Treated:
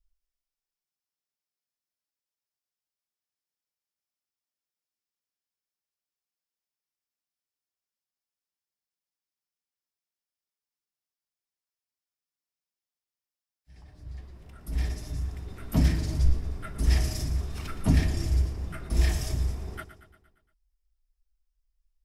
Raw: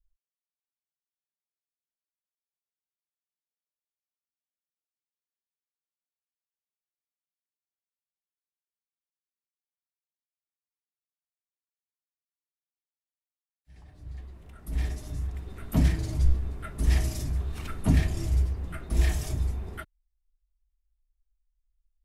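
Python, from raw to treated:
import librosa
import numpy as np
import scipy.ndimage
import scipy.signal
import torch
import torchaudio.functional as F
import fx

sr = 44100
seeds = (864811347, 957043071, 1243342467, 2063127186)

y = fx.peak_eq(x, sr, hz=5200.0, db=7.5, octaves=0.27)
y = fx.echo_feedback(y, sr, ms=116, feedback_pct=57, wet_db=-12.5)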